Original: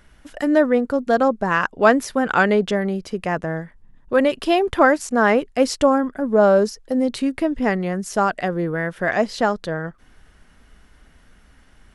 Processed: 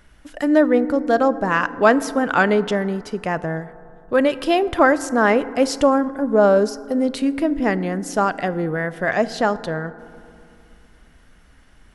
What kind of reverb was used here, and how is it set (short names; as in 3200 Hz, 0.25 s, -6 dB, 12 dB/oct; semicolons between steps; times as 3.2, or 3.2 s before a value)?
FDN reverb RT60 2.5 s, low-frequency decay 1.35×, high-frequency decay 0.3×, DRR 14.5 dB